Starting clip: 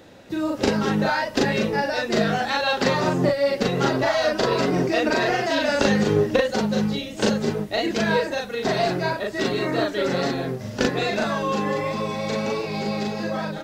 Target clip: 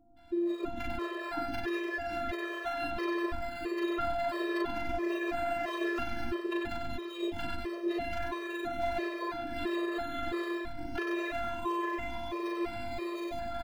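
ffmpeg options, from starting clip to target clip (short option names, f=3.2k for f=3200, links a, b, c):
-filter_complex "[0:a]asplit=2[a][b];[b]asplit=4[c][d][e][f];[c]adelay=94,afreqshift=-98,volume=-3dB[g];[d]adelay=188,afreqshift=-196,volume=-13.2dB[h];[e]adelay=282,afreqshift=-294,volume=-23.3dB[i];[f]adelay=376,afreqshift=-392,volume=-33.5dB[j];[g][h][i][j]amix=inputs=4:normalize=0[k];[a][k]amix=inputs=2:normalize=0,acrossover=split=250|870|3600[l][m][n][o];[l]acompressor=threshold=-25dB:ratio=4[p];[m]acompressor=threshold=-25dB:ratio=4[q];[n]acompressor=threshold=-27dB:ratio=4[r];[o]acompressor=threshold=-44dB:ratio=4[s];[p][q][r][s]amix=inputs=4:normalize=0,afftfilt=real='hypot(re,im)*cos(PI*b)':imag='0':win_size=512:overlap=0.75,acrossover=split=680[t][u];[u]adelay=170[v];[t][v]amix=inputs=2:normalize=0,acrossover=split=470|3900[w][x][y];[y]acrusher=samples=12:mix=1:aa=0.000001:lfo=1:lforange=7.2:lforate=0.32[z];[w][x][z]amix=inputs=3:normalize=0,afftfilt=real='re*gt(sin(2*PI*1.5*pts/sr)*(1-2*mod(floor(b*sr/1024/340),2)),0)':imag='im*gt(sin(2*PI*1.5*pts/sr)*(1-2*mod(floor(b*sr/1024/340),2)),0)':win_size=1024:overlap=0.75,volume=-1.5dB"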